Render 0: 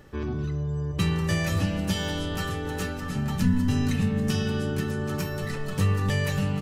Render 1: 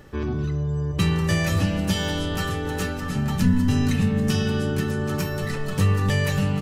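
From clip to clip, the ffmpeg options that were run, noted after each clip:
-af "acontrast=58,volume=0.75"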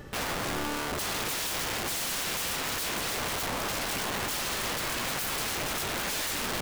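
-af "acompressor=threshold=0.0794:ratio=12,aeval=exprs='(mod(29.9*val(0)+1,2)-1)/29.9':c=same,volume=1.33"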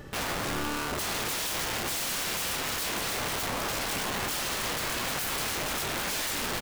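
-filter_complex "[0:a]asplit=2[s0][s1];[s1]adelay=28,volume=0.299[s2];[s0][s2]amix=inputs=2:normalize=0"

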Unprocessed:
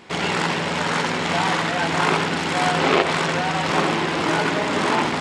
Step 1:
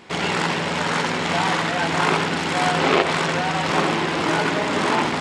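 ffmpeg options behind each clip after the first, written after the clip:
-af anull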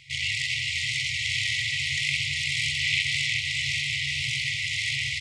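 -filter_complex "[0:a]afftfilt=real='re*(1-between(b*sr/4096,150,1900))':imag='im*(1-between(b*sr/4096,150,1900))':win_size=4096:overlap=0.75,highshelf=f=10000:g=-6,asplit=2[s0][s1];[s1]aecho=0:1:384|768|1152|1536:0.562|0.197|0.0689|0.0241[s2];[s0][s2]amix=inputs=2:normalize=0"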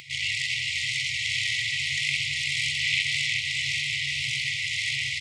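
-af "highpass=f=150:p=1,acompressor=mode=upward:threshold=0.01:ratio=2.5"

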